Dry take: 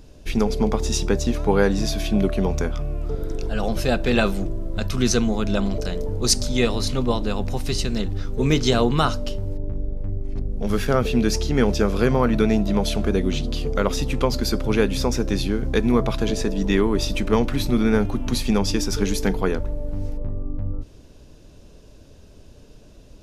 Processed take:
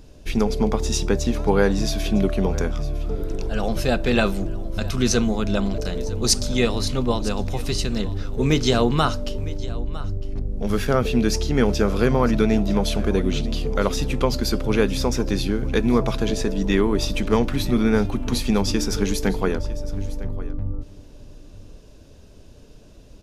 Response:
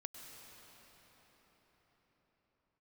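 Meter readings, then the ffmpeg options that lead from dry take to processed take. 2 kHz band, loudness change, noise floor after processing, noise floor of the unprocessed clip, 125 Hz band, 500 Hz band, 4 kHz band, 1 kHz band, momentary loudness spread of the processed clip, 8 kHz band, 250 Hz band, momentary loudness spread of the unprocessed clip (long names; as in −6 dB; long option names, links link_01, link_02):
0.0 dB, 0.0 dB, −45 dBFS, −47 dBFS, 0.0 dB, 0.0 dB, 0.0 dB, 0.0 dB, 10 LU, 0.0 dB, 0.0 dB, 11 LU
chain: -af "aecho=1:1:956:0.133"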